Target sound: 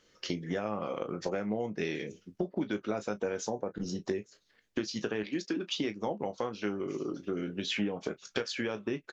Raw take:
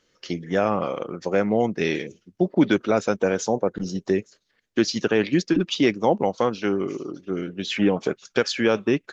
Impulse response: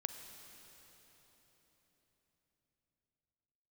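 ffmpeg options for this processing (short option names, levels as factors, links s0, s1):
-filter_complex "[0:a]asettb=1/sr,asplit=3[s0][s1][s2];[s0]atrim=end=5.234[s3];[s1]atrim=start=5.23:end=5.77,asetpts=PTS-STARTPTS,afade=t=in:d=0.004:c=qsin,afade=t=out:st=0.536:d=0.004:c=qsin,highpass=250[s4];[s2]atrim=start=5.766[s5];[s3][s4]acrossfade=d=0.004:c1=hsin:c2=qsin[s6];[s6][s5]acrossfade=d=0.004:c1=qsin:c2=hsin,acompressor=threshold=0.0282:ratio=6,asplit=2[s7][s8];[s8]aecho=0:1:19|34:0.316|0.178[s9];[s7][s9]amix=inputs=2:normalize=0"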